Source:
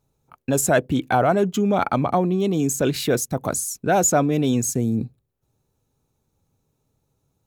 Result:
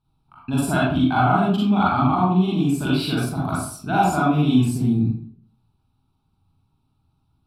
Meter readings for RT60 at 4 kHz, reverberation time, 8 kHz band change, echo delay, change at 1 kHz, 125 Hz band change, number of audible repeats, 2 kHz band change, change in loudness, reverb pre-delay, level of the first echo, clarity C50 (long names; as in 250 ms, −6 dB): 0.35 s, 0.55 s, −12.5 dB, no echo audible, +2.5 dB, +4.5 dB, no echo audible, +1.0 dB, +1.0 dB, 37 ms, no echo audible, −2.0 dB